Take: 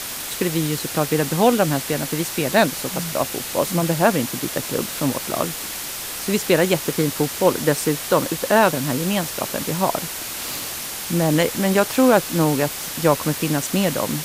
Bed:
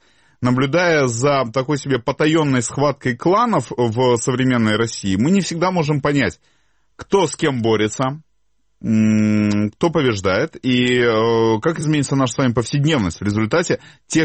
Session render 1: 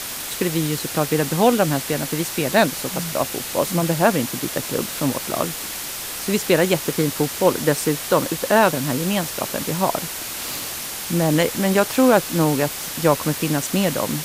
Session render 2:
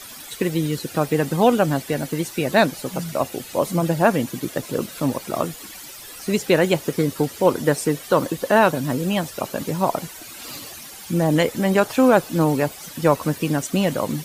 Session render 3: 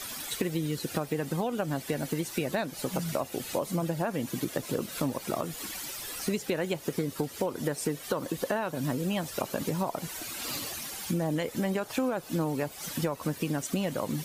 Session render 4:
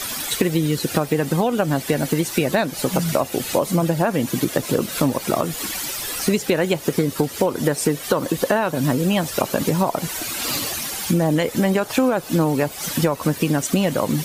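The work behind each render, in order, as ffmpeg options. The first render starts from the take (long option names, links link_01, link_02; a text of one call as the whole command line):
ffmpeg -i in.wav -af anull out.wav
ffmpeg -i in.wav -af "afftdn=noise_reduction=13:noise_floor=-30" out.wav
ffmpeg -i in.wav -af "alimiter=limit=-8.5dB:level=0:latency=1:release=203,acompressor=threshold=-27dB:ratio=6" out.wav
ffmpeg -i in.wav -af "volume=11dB" out.wav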